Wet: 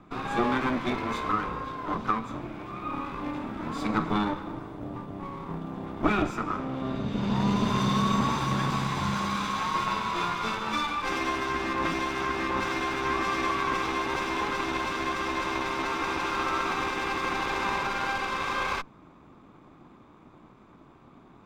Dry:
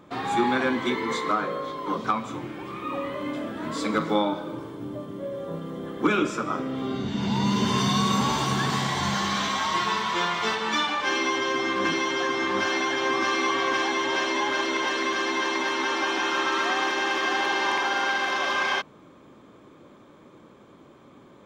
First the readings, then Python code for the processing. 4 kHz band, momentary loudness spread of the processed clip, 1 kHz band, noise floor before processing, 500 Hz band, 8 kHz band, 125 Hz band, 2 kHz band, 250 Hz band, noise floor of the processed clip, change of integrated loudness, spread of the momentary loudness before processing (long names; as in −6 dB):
−7.5 dB, 9 LU, −2.0 dB, −52 dBFS, −5.0 dB, −8.0 dB, 0.0 dB, −5.5 dB, −2.0 dB, −54 dBFS, −3.5 dB, 9 LU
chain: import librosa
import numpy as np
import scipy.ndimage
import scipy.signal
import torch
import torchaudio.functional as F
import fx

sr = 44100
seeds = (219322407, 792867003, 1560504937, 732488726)

y = fx.lower_of_two(x, sr, delay_ms=0.82)
y = fx.high_shelf(y, sr, hz=3000.0, db=-10.5)